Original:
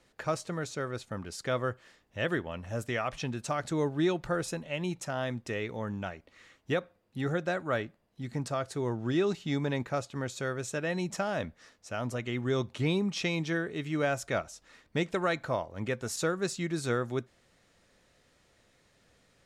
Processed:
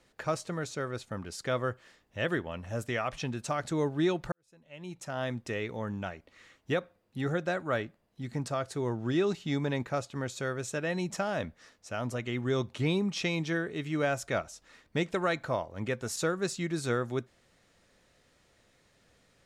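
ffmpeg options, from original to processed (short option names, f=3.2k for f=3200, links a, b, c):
-filter_complex "[0:a]asplit=2[a][b];[a]atrim=end=4.32,asetpts=PTS-STARTPTS,afade=t=out:st=4.316:d=0.004:c=hsin[c];[b]atrim=start=4.32,asetpts=PTS-STARTPTS,afade=t=in:d=0.92:c=qua[d];[c][d]concat=n=2:v=0:a=1"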